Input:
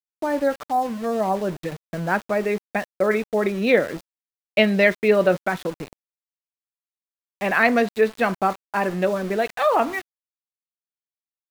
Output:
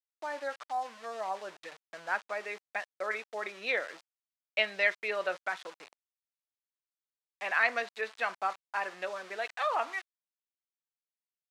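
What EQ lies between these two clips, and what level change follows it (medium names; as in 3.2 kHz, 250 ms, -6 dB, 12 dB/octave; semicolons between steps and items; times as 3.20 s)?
high-pass 910 Hz 12 dB/octave; low-pass 6.9 kHz 12 dB/octave; -7.0 dB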